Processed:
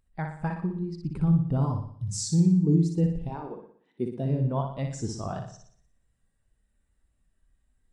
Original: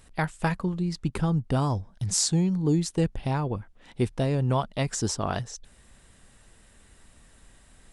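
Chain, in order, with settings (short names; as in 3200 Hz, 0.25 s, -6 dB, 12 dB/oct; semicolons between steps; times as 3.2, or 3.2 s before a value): 3.28–4.28 HPF 300 Hz -> 110 Hz 24 dB/oct; soft clip -10 dBFS, distortion -31 dB; on a send: flutter echo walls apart 10.2 m, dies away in 0.83 s; on the sum: spectral expander 1.5:1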